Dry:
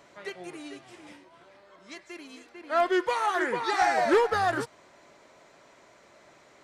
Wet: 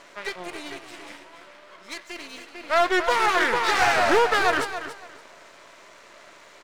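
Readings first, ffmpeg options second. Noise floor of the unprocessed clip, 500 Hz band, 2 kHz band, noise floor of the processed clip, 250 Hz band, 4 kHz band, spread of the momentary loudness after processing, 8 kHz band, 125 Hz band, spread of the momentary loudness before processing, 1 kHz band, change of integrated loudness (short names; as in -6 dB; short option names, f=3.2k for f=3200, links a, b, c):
-58 dBFS, +2.5 dB, +8.0 dB, -50 dBFS, +1.0 dB, +9.5 dB, 20 LU, +8.5 dB, +1.5 dB, 20 LU, +4.0 dB, +4.5 dB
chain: -filter_complex "[0:a]aeval=exprs='max(val(0),0)':c=same,asplit=2[a][b];[b]highpass=f=720:p=1,volume=14dB,asoftclip=type=tanh:threshold=-14dB[c];[a][c]amix=inputs=2:normalize=0,lowpass=f=2.8k:p=1,volume=-6dB,highshelf=f=5.2k:g=8,bandreject=f=780:w=12,aecho=1:1:281|562|843:0.282|0.062|0.0136,volume=5dB"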